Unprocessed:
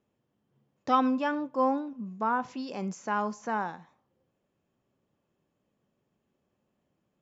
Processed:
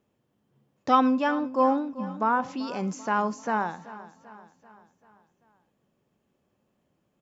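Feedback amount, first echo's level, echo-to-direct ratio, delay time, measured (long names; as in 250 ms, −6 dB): 52%, −17.0 dB, −15.5 dB, 388 ms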